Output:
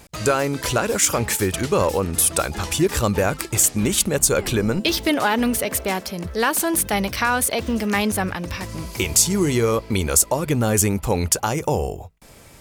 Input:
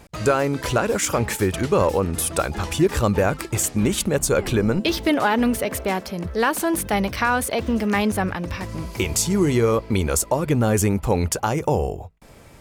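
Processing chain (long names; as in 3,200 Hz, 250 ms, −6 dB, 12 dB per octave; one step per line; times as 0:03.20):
high-shelf EQ 3,100 Hz +8.5 dB
level −1 dB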